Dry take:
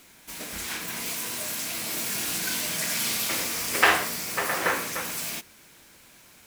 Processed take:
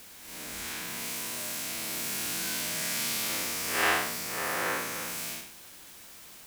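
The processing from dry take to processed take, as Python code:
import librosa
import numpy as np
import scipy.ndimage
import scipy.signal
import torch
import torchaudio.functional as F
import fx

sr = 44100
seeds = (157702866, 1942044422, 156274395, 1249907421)

y = fx.spec_blur(x, sr, span_ms=154.0)
y = fx.quant_dither(y, sr, seeds[0], bits=8, dither='triangular')
y = y * librosa.db_to_amplitude(-2.0)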